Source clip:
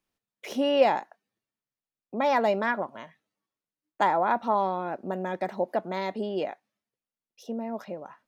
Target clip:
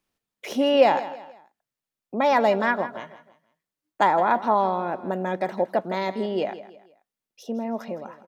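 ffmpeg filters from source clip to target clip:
-af "aecho=1:1:162|324|486:0.188|0.0697|0.0258,volume=1.58"

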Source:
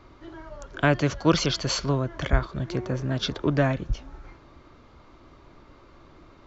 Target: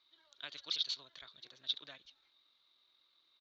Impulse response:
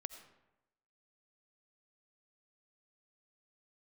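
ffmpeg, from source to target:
-af "atempo=1.9,bandpass=f=3800:t=q:w=12:csg=0,volume=1.68"

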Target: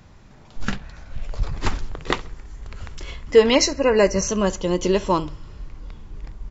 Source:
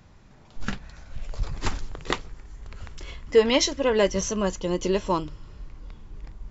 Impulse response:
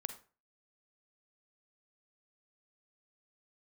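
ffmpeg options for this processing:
-filter_complex "[0:a]asettb=1/sr,asplit=3[s0][s1][s2];[s0]atrim=end=0.764[s3];[s1]atrim=start=0.76:end=2.17,asetpts=PTS-STARTPTS,afade=t=in:d=0.004:c=qsin,afade=t=out:st=1.406:d=0.004:c=qsin,highshelf=f=6200:g=-8[s4];[s2]atrim=start=2.166[s5];[s3][s4]acrossfade=d=0.004:c1=hsin:c2=qsin[s6];[s6][s5]acrossfade=d=0.004:c1=qsin:c2=hsin,asplit=3[s7][s8][s9];[s7]afade=t=out:st=3.54:d=0.02[s10];[s8]asuperstop=centerf=3400:order=20:qfactor=3.1,afade=t=in:st=3.54:d=0.02,afade=t=out:st=4.27:d=0.02[s11];[s9]afade=t=in:st=4.27:d=0.02[s12];[s10][s11][s12]amix=inputs=3:normalize=0,asplit=2[s13][s14];[s14]adelay=67,lowpass=f=4300:p=1,volume=0.0944,asplit=2[s15][s16];[s16]adelay=67,lowpass=f=4300:p=1,volume=0.36,asplit=2[s17][s18];[s18]adelay=67,lowpass=f=4300:p=1,volume=0.36[s19];[s13][s15][s17][s19]amix=inputs=4:normalize=0,volume=1.68"

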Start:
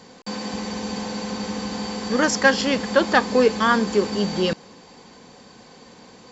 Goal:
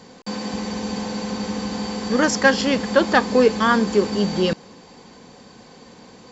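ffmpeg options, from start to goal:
-af "lowshelf=f=500:g=3"

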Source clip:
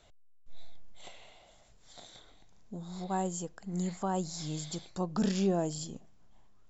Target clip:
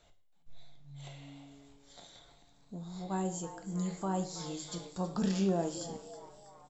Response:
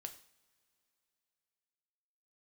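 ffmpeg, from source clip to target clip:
-filter_complex "[0:a]asplit=6[s0][s1][s2][s3][s4][s5];[s1]adelay=324,afreqshift=140,volume=0.178[s6];[s2]adelay=648,afreqshift=280,volume=0.0923[s7];[s3]adelay=972,afreqshift=420,volume=0.0479[s8];[s4]adelay=1296,afreqshift=560,volume=0.0251[s9];[s5]adelay=1620,afreqshift=700,volume=0.013[s10];[s0][s6][s7][s8][s9][s10]amix=inputs=6:normalize=0[s11];[1:a]atrim=start_sample=2205[s12];[s11][s12]afir=irnorm=-1:irlink=0,volume=1.26"

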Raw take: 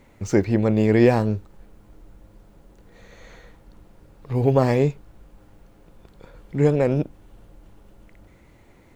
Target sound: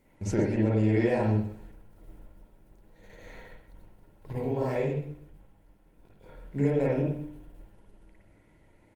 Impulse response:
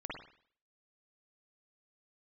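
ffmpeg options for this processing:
-filter_complex "[0:a]bandreject=f=60:t=h:w=6,bandreject=f=120:t=h:w=6,bandreject=f=180:t=h:w=6,bandreject=f=240:t=h:w=6,bandreject=f=300:t=h:w=6,agate=range=0.447:threshold=0.00501:ratio=16:detection=peak,highshelf=f=7400:g=8.5,acompressor=threshold=0.0794:ratio=4,asettb=1/sr,asplit=3[s0][s1][s2];[s0]atrim=end=4.324[s3];[s1]atrim=start=4.32:end=6.56,asetpts=PTS-STARTPTS,afade=t=in:d=0.004:c=qsin,afade=t=out:st=2.236:d=0.004:c=qsin,flanger=delay=19.5:depth=5.3:speed=1.7[s4];[s2]atrim=start=6.556[s5];[s3][s4]acrossfade=d=0.004:c1=hsin:c2=qsin[s6];[s6][s5]acrossfade=d=0.004:c1=qsin:c2=hsin,asuperstop=centerf=1200:order=12:qfactor=6.5,aecho=1:1:127|254|381:0.168|0.0487|0.0141[s7];[1:a]atrim=start_sample=2205,afade=t=out:st=0.29:d=0.01,atrim=end_sample=13230[s8];[s7][s8]afir=irnorm=-1:irlink=0" -ar 48000 -c:a libopus -b:a 32k

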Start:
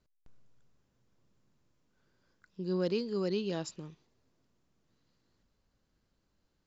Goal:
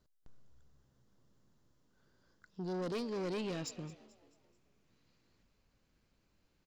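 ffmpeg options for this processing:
-filter_complex "[0:a]asoftclip=type=tanh:threshold=0.015,asetnsamples=n=441:p=0,asendcmd='2.95 equalizer g 7',equalizer=f=2400:t=o:w=0.36:g=-7,asplit=5[s0][s1][s2][s3][s4];[s1]adelay=218,afreqshift=65,volume=0.112[s5];[s2]adelay=436,afreqshift=130,volume=0.0519[s6];[s3]adelay=654,afreqshift=195,volume=0.0237[s7];[s4]adelay=872,afreqshift=260,volume=0.011[s8];[s0][s5][s6][s7][s8]amix=inputs=5:normalize=0,volume=1.19"

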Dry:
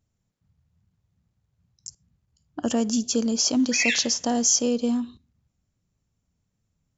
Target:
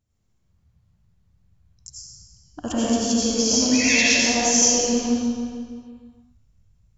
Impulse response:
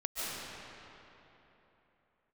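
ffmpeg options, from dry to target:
-filter_complex "[0:a]asubboost=boost=5:cutoff=120[s0];[1:a]atrim=start_sample=2205,asetrate=74970,aresample=44100[s1];[s0][s1]afir=irnorm=-1:irlink=0,volume=1.68"

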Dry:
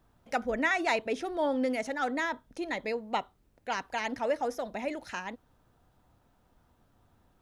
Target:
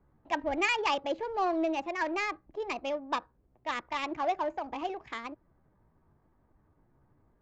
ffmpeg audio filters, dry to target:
-filter_complex "[0:a]acrossover=split=460|4000[s0][s1][s2];[s2]alimiter=level_in=5.96:limit=0.0631:level=0:latency=1:release=159,volume=0.168[s3];[s0][s1][s3]amix=inputs=3:normalize=0,asetrate=55563,aresample=44100,atempo=0.793701,adynamicsmooth=sensitivity=5:basefreq=1300,aresample=16000,aresample=44100"

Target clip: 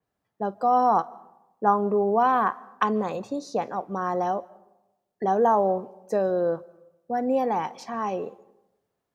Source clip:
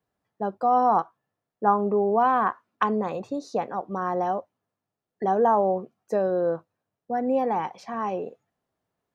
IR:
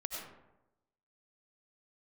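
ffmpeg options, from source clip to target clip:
-filter_complex "[0:a]asplit=2[s0][s1];[1:a]atrim=start_sample=2205,adelay=51[s2];[s1][s2]afir=irnorm=-1:irlink=0,volume=0.0841[s3];[s0][s3]amix=inputs=2:normalize=0,adynamicequalizer=threshold=0.00708:dfrequency=3800:dqfactor=0.7:tfrequency=3800:tqfactor=0.7:attack=5:release=100:ratio=0.375:range=4:mode=boostabove:tftype=highshelf"

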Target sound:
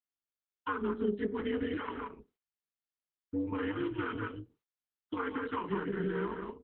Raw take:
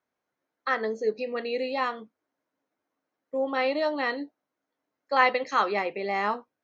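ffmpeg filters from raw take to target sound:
-af "highpass=280,aemphasis=mode=reproduction:type=cd,bandreject=f=60:t=h:w=6,bandreject=f=120:t=h:w=6,bandreject=f=180:t=h:w=6,bandreject=f=240:t=h:w=6,bandreject=f=300:t=h:w=6,bandreject=f=360:t=h:w=6,bandreject=f=420:t=h:w=6,bandreject=f=480:t=h:w=6,aecho=1:1:170:0.473,adynamicequalizer=threshold=0.00562:dfrequency=410:dqfactor=5.1:tfrequency=410:tqfactor=5.1:attack=5:release=100:ratio=0.375:range=3:mode=boostabove:tftype=bell,acompressor=threshold=0.0316:ratio=4,aeval=exprs='val(0)*sin(2*PI*140*n/s)':c=same,asetrate=32097,aresample=44100,atempo=1.37395,agate=range=0.0224:threshold=0.00141:ratio=3:detection=peak,asuperstop=centerf=650:order=20:qfactor=1.6,volume=1.58" -ar 48000 -c:a libopus -b:a 8k

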